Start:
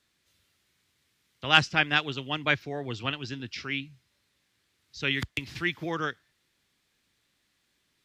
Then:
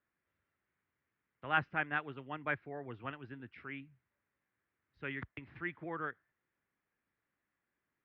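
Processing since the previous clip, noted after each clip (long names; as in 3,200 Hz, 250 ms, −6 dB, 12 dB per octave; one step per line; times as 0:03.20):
low-pass filter 1,800 Hz 24 dB per octave
spectral tilt +1.5 dB per octave
level −8 dB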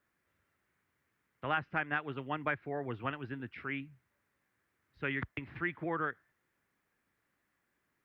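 downward compressor 6 to 1, threshold −36 dBFS, peak gain reduction 11 dB
level +7 dB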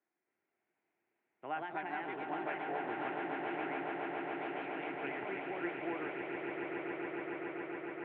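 delay with pitch and tempo change per echo 281 ms, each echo +2 semitones, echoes 3
loudspeaker in its box 310–2,400 Hz, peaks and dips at 350 Hz +7 dB, 530 Hz −5 dB, 750 Hz +6 dB, 1,200 Hz −9 dB, 1,700 Hz −7 dB
echo that builds up and dies away 140 ms, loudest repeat 8, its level −7.5 dB
level −5.5 dB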